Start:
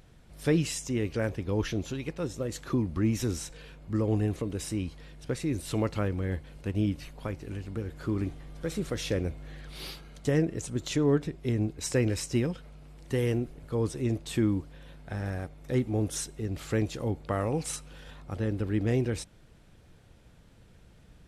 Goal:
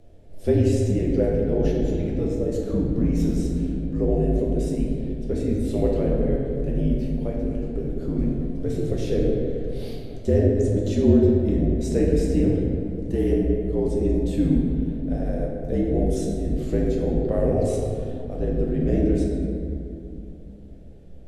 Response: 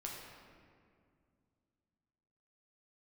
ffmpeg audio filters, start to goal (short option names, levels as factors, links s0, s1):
-filter_complex "[0:a]afreqshift=-55,lowshelf=f=800:t=q:w=3:g=9.5[s0];[1:a]atrim=start_sample=2205,asetrate=36162,aresample=44100[s1];[s0][s1]afir=irnorm=-1:irlink=0,volume=0.708"